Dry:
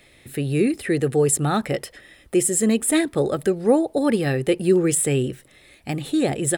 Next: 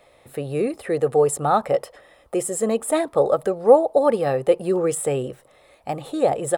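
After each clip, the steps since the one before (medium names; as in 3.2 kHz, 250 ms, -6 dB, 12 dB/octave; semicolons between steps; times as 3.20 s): high-order bell 770 Hz +14.5 dB; trim -7 dB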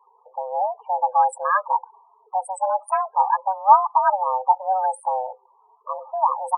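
local Wiener filter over 25 samples; frequency shift +380 Hz; loudest bins only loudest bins 16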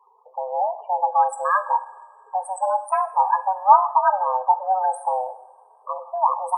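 two-slope reverb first 0.73 s, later 3 s, from -18 dB, DRR 10.5 dB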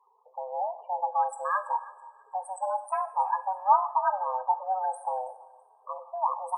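thinning echo 329 ms, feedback 26%, high-pass 790 Hz, level -19.5 dB; trim -8 dB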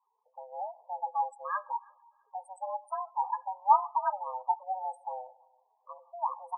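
spectral gate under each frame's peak -15 dB strong; upward expansion 1.5:1, over -41 dBFS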